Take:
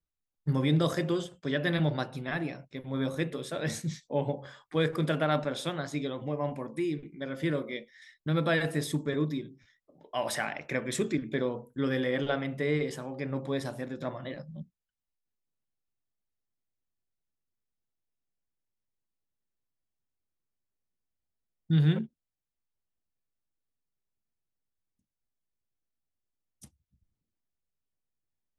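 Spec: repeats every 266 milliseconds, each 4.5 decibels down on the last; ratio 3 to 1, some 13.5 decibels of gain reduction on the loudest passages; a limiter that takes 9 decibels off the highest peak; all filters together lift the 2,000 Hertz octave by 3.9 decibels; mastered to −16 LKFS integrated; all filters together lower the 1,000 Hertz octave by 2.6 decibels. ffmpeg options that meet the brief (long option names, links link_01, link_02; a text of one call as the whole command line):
ffmpeg -i in.wav -af "equalizer=frequency=1000:width_type=o:gain=-6,equalizer=frequency=2000:width_type=o:gain=6.5,acompressor=threshold=-39dB:ratio=3,alimiter=level_in=8dB:limit=-24dB:level=0:latency=1,volume=-8dB,aecho=1:1:266|532|798|1064|1330|1596|1862|2128|2394:0.596|0.357|0.214|0.129|0.0772|0.0463|0.0278|0.0167|0.01,volume=25.5dB" out.wav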